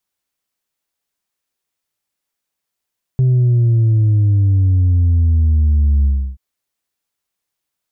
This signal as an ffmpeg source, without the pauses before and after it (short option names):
-f lavfi -i "aevalsrc='0.316*clip((3.18-t)/0.32,0,1)*tanh(1.26*sin(2*PI*130*3.18/log(65/130)*(exp(log(65/130)*t/3.18)-1)))/tanh(1.26)':d=3.18:s=44100"